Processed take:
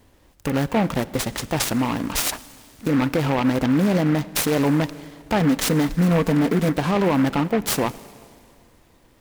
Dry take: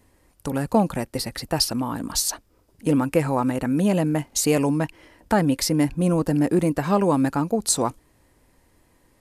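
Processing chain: 5.40–6.69 s: comb 4.5 ms, depth 74%; peak limiter -15.5 dBFS, peak gain reduction 8.5 dB; Schroeder reverb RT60 2.3 s, combs from 31 ms, DRR 17 dB; delay time shaken by noise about 1.3 kHz, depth 0.08 ms; trim +4 dB

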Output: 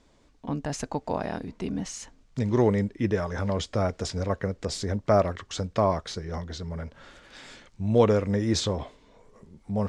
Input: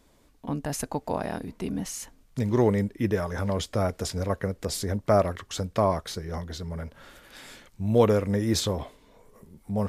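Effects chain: low-pass 7.5 kHz 24 dB/octave

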